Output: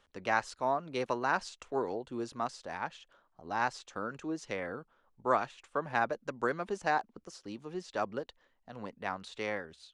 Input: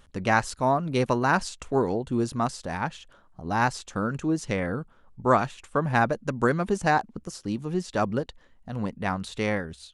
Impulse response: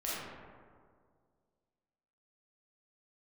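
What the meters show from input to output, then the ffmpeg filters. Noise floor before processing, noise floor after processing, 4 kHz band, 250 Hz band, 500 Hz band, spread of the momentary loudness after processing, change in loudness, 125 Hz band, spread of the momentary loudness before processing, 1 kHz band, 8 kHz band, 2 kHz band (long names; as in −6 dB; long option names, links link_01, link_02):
−57 dBFS, −73 dBFS, −7.5 dB, −13.0 dB, −8.0 dB, 14 LU, −8.5 dB, −18.5 dB, 10 LU, −7.0 dB, −11.0 dB, −7.0 dB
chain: -filter_complex "[0:a]acrossover=split=310 7100:gain=0.224 1 0.2[link_01][link_02][link_03];[link_01][link_02][link_03]amix=inputs=3:normalize=0,volume=-7dB"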